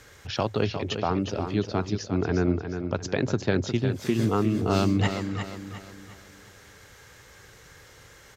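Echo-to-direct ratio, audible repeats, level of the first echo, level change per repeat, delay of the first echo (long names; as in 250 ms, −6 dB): −7.0 dB, 4, −8.0 dB, −8.0 dB, 356 ms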